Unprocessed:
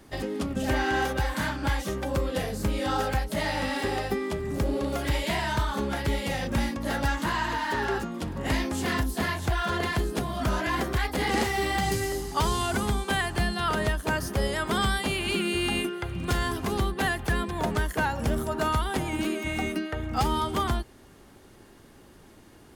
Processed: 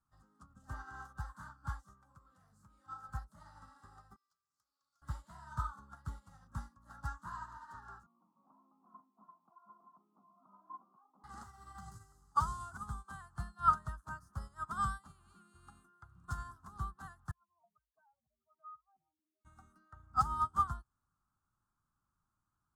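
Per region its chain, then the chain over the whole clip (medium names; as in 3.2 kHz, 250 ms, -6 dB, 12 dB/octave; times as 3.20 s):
1.94–3.09 s: high-pass 83 Hz + peaking EQ 2.3 kHz +7.5 dB 0.41 oct + compression 4:1, threshold -28 dBFS
4.16–5.02 s: band-pass filter 4.9 kHz, Q 2.7 + integer overflow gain 35 dB
8.06–11.24 s: Chebyshev band-pass 200–1100 Hz, order 4 + distance through air 360 m
17.31–19.45 s: spectral contrast enhancement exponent 2.9 + vowel filter a
whole clip: FFT filter 150 Hz 0 dB, 460 Hz -22 dB, 1.3 kHz +10 dB, 2.3 kHz -27 dB, 4 kHz -12 dB, 7.7 kHz -1 dB, 12 kHz -10 dB; upward expansion 2.5:1, over -35 dBFS; trim -4 dB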